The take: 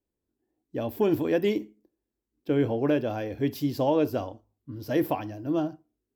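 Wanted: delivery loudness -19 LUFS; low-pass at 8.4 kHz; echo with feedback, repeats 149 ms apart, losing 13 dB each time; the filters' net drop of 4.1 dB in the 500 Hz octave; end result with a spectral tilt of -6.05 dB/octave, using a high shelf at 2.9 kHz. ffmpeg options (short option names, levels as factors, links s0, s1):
-af "lowpass=8400,equalizer=f=500:t=o:g=-5,highshelf=f=2900:g=-6,aecho=1:1:149|298|447:0.224|0.0493|0.0108,volume=3.55"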